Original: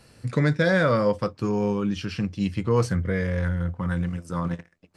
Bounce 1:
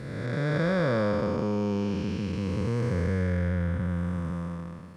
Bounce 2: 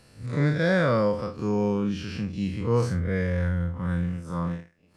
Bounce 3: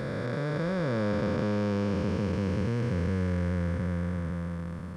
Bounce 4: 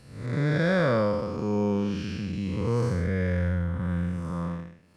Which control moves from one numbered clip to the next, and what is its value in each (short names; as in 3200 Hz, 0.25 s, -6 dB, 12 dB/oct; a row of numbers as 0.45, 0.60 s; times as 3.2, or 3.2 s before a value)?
time blur, width: 672, 97, 1750, 263 ms